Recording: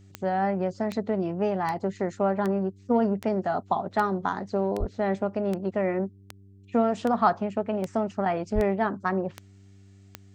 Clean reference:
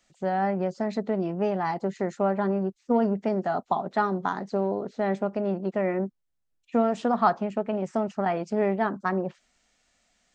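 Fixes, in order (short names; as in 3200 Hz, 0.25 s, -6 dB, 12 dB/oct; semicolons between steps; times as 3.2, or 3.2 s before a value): de-click; de-hum 97.9 Hz, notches 4; 4.79–4.91 HPF 140 Hz 24 dB/oct; 8.54–8.66 HPF 140 Hz 24 dB/oct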